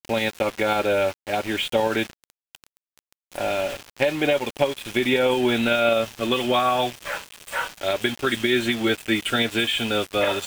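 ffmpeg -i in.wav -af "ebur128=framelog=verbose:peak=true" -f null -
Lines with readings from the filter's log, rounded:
Integrated loudness:
  I:         -23.0 LUFS
  Threshold: -33.5 LUFS
Loudness range:
  LRA:         4.4 LU
  Threshold: -43.6 LUFS
  LRA low:   -26.3 LUFS
  LRA high:  -21.8 LUFS
True peak:
  Peak:       -6.6 dBFS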